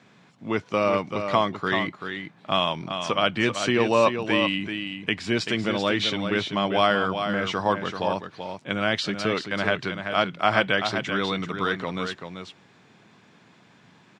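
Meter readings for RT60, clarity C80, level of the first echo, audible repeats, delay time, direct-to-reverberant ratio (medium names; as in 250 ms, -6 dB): no reverb, no reverb, -7.5 dB, 1, 386 ms, no reverb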